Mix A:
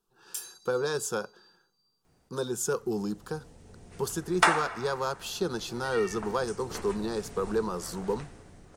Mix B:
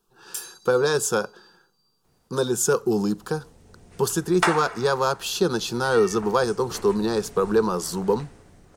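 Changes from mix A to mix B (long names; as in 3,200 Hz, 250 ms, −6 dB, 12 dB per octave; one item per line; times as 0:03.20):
speech +8.5 dB
first sound +4.0 dB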